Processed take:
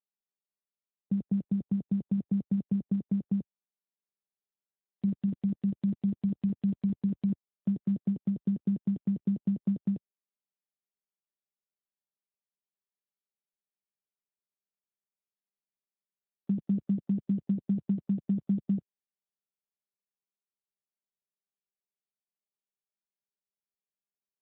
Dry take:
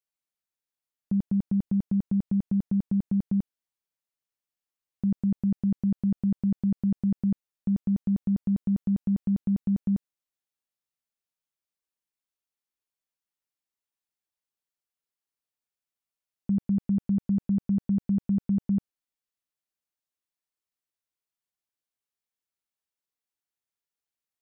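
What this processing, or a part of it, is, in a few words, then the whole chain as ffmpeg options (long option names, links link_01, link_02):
mobile call with aggressive noise cancelling: -af "highpass=150,afftdn=noise_reduction=35:noise_floor=-47" -ar 8000 -c:a libopencore_amrnb -b:a 12200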